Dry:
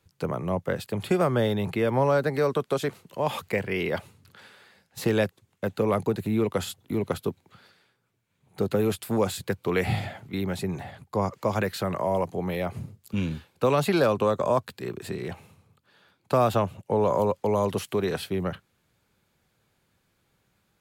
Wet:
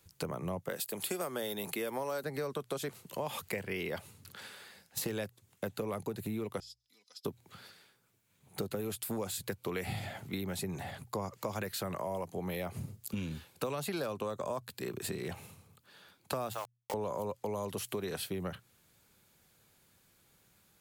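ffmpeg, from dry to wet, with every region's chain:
ffmpeg -i in.wav -filter_complex "[0:a]asettb=1/sr,asplit=3[link_01][link_02][link_03];[link_01]atrim=end=0.694[link_04];[link_02]atrim=start=0.69:end=2.24,asetpts=PTS-STARTPTS,afade=type=in:duration=0.004:curve=qsin,afade=type=out:start_time=1.546:duration=0.004:curve=qsin,highpass=250,highshelf=frequency=5700:gain=11.5[link_05];[link_03]atrim=start=2.236[link_06];[link_04][link_05]acrossfade=duration=0.004:curve1=hsin:curve2=qsin[link_07];[link_07][link_06]acrossfade=duration=0.004:curve1=qsin:curve2=hsin,asettb=1/sr,asplit=3[link_08][link_09][link_10];[link_08]atrim=end=6.604[link_11];[link_09]atrim=start=6.6:end=7.25,asetpts=PTS-STARTPTS,afade=type=in:duration=0.004:curve=qsin,afade=type=out:start_time=0.646:duration=0.004:curve=qsin,bandpass=frequency=5100:width_type=q:width=14,aecho=1:1:4:0.69,atrim=end_sample=28665[link_12];[link_10]atrim=start=7.246[link_13];[link_11][link_12]acrossfade=duration=0.004:curve1=hsin:curve2=qsin[link_14];[link_14][link_13]acrossfade=duration=0.004:curve1=qsin:curve2=hsin,asettb=1/sr,asplit=3[link_15][link_16][link_17];[link_15]atrim=end=16.534[link_18];[link_16]atrim=start=16.53:end=16.94,asetpts=PTS-STARTPTS,afade=type=in:duration=0.004:curve=qsin,afade=type=out:start_time=0.406:duration=0.004:curve=qsin,highpass=760,aeval=exprs='val(0)*gte(abs(val(0)),0.0158)':channel_layout=same[link_19];[link_17]atrim=start=16.936[link_20];[link_18][link_19]acrossfade=duration=0.004:curve1=hsin:curve2=qsin[link_21];[link_21][link_20]acrossfade=duration=0.004:curve1=qsin:curve2=hsin,highshelf=frequency=5300:gain=11.5,bandreject=frequency=60:width_type=h:width=6,bandreject=frequency=120:width_type=h:width=6,acompressor=threshold=-35dB:ratio=5" out.wav

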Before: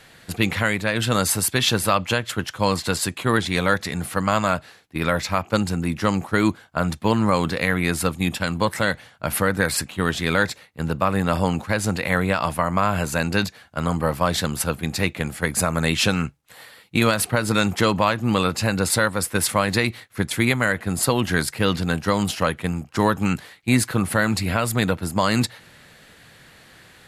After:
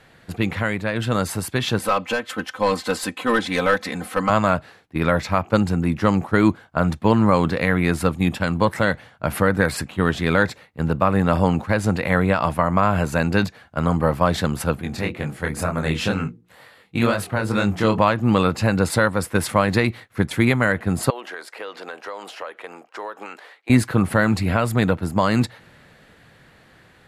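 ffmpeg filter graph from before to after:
ffmpeg -i in.wav -filter_complex "[0:a]asettb=1/sr,asplit=3[link_01][link_02][link_03];[link_01]atrim=end=1.794[link_04];[link_02]atrim=start=1.79:end=4.3,asetpts=PTS-STARTPTS,afade=type=in:duration=0.004:curve=qsin,afade=type=out:start_time=2.506:duration=0.004:curve=qsin,highpass=frequency=350:poles=1,aecho=1:1:3.9:0.8,atrim=end_sample=110691,aeval=exprs='clip(val(0),-1,0.178)':channel_layout=same[link_05];[link_03]atrim=start=4.296[link_06];[link_04][link_05]acrossfade=duration=0.004:curve1=hsin:curve2=qsin[link_07];[link_07][link_06]acrossfade=duration=0.004:curve1=qsin:curve2=hsin,asettb=1/sr,asplit=3[link_08][link_09][link_10];[link_08]atrim=end=14.824[link_11];[link_09]atrim=start=14.82:end=17.98,asetpts=PTS-STARTPTS,afade=type=in:duration=0.004:curve=qsin,afade=type=out:start_time=3.156:duration=0.004:curve=qsin,bandreject=frequency=60:width_type=h:width=6,bandreject=frequency=120:width_type=h:width=6,bandreject=frequency=180:width_type=h:width=6,bandreject=frequency=240:width_type=h:width=6,bandreject=frequency=300:width_type=h:width=6,bandreject=frequency=360:width_type=h:width=6,bandreject=frequency=420:width_type=h:width=6,bandreject=frequency=480:width_type=h:width=6,flanger=delay=20:depth=7.7:speed=2.1[link_12];[link_10]atrim=start=17.976[link_13];[link_11][link_12]acrossfade=duration=0.004:curve1=hsin:curve2=qsin[link_14];[link_14][link_13]acrossfade=duration=0.004:curve1=qsin:curve2=hsin,asettb=1/sr,asplit=3[link_15][link_16][link_17];[link_15]atrim=end=21.104[link_18];[link_16]atrim=start=21.1:end=23.7,asetpts=PTS-STARTPTS,afade=type=in:duration=0.004:curve=qsin,afade=type=out:start_time=2.596:duration=0.004:curve=qsin,highpass=frequency=430:width=0.5412,highpass=frequency=430:width=1.3066,highshelf=frequency=7100:gain=-9,acompressor=threshold=-32dB:ratio=4:attack=3.2:release=140:knee=1:detection=peak[link_19];[link_17]atrim=start=23.696[link_20];[link_18][link_19]acrossfade=duration=0.004:curve1=hsin:curve2=qsin[link_21];[link_21][link_20]acrossfade=duration=0.004:curve1=qsin:curve2=hsin,highshelf=frequency=2800:gain=-11.5,dynaudnorm=framelen=550:gausssize=9:maxgain=5dB" out.wav

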